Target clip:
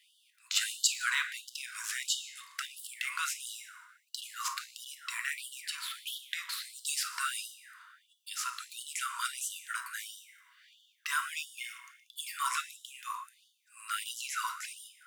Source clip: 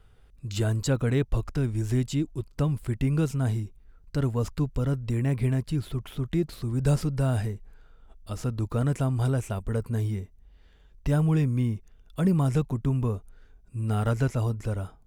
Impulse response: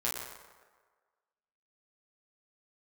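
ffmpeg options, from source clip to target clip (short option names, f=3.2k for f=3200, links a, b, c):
-filter_complex "[0:a]asplit=2[a][b];[1:a]atrim=start_sample=2205[c];[b][c]afir=irnorm=-1:irlink=0,volume=-6.5dB[d];[a][d]amix=inputs=2:normalize=0,afftfilt=real='re*gte(b*sr/1024,920*pow(2900/920,0.5+0.5*sin(2*PI*1.5*pts/sr)))':imag='im*gte(b*sr/1024,920*pow(2900/920,0.5+0.5*sin(2*PI*1.5*pts/sr)))':win_size=1024:overlap=0.75,volume=5.5dB"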